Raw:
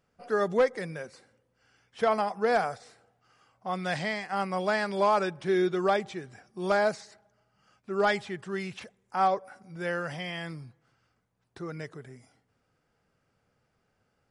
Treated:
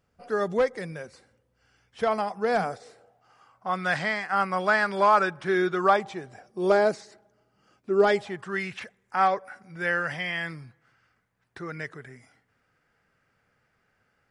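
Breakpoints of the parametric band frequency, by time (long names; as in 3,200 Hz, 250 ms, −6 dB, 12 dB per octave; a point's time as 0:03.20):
parametric band +10 dB 1.1 octaves
0:02.42 63 Hz
0:02.74 360 Hz
0:03.69 1,400 Hz
0:05.74 1,400 Hz
0:06.87 340 Hz
0:08.06 340 Hz
0:08.57 1,800 Hz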